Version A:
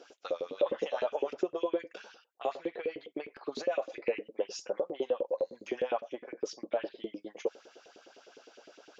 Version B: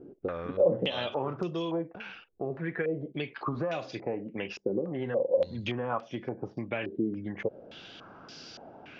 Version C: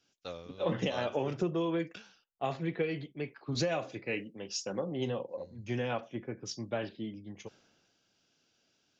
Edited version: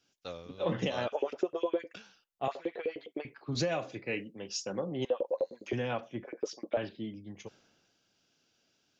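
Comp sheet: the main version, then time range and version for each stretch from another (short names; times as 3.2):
C
1.08–1.95 from A
2.48–3.25 from A
5.05–5.73 from A
6.24–6.77 from A
not used: B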